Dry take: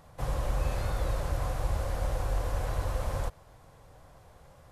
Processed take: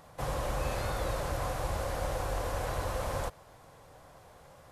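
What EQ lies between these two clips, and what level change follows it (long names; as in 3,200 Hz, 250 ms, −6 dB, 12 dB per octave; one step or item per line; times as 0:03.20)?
low-shelf EQ 120 Hz −11 dB
+3.0 dB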